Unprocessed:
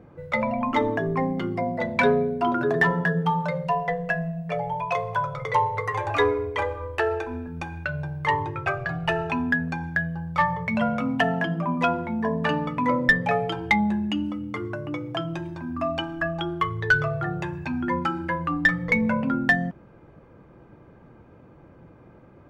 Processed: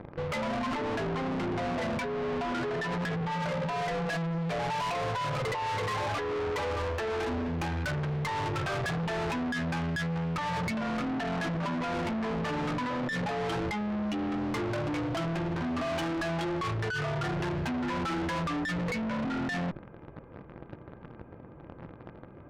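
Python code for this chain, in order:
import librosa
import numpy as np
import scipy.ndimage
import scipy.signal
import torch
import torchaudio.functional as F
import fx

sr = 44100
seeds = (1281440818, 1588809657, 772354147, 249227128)

p1 = fx.fuzz(x, sr, gain_db=44.0, gate_db=-43.0)
p2 = x + (p1 * librosa.db_to_amplitude(-10.5))
p3 = scipy.ndimage.gaussian_filter1d(p2, 2.9, mode='constant')
p4 = fx.over_compress(p3, sr, threshold_db=-23.0, ratio=-1.0)
y = fx.tube_stage(p4, sr, drive_db=30.0, bias=0.4)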